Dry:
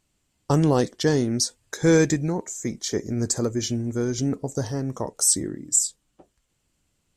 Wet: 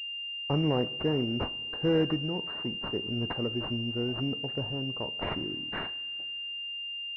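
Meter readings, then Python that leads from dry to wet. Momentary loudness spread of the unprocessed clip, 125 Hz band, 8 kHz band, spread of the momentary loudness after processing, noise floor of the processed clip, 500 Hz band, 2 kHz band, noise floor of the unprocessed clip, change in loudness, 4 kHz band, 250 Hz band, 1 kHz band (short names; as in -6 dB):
9 LU, -7.5 dB, under -40 dB, 7 LU, -38 dBFS, -7.5 dB, +2.0 dB, -73 dBFS, -7.5 dB, n/a, -7.5 dB, -6.0 dB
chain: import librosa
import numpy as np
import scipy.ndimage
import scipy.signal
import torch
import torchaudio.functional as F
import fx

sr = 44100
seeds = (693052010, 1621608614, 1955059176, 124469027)

y = fx.rev_double_slope(x, sr, seeds[0], early_s=0.63, late_s=3.5, knee_db=-16, drr_db=14.5)
y = fx.pwm(y, sr, carrier_hz=2800.0)
y = y * librosa.db_to_amplitude(-7.5)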